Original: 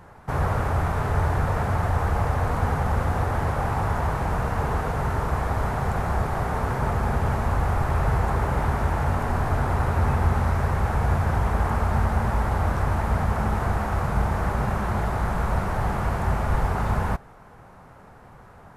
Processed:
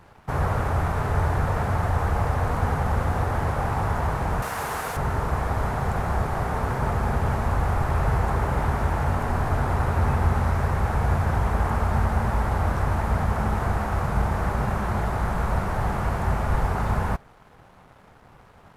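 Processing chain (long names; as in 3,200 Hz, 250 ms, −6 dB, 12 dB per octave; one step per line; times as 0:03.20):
dead-zone distortion −53.5 dBFS
0:04.42–0:04.97: spectral tilt +3.5 dB per octave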